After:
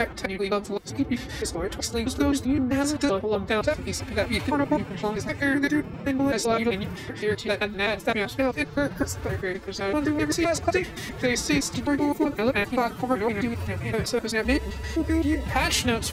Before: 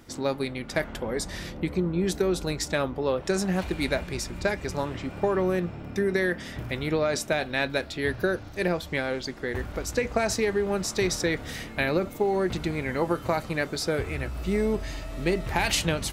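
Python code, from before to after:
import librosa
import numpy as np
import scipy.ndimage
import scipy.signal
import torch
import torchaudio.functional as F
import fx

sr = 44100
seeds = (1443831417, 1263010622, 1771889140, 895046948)

y = fx.block_reorder(x, sr, ms=129.0, group=7)
y = fx.spec_repair(y, sr, seeds[0], start_s=8.96, length_s=0.2, low_hz=1700.0, high_hz=4300.0, source='both')
y = fx.pitch_keep_formants(y, sr, semitones=7.0)
y = y * 10.0 ** (2.5 / 20.0)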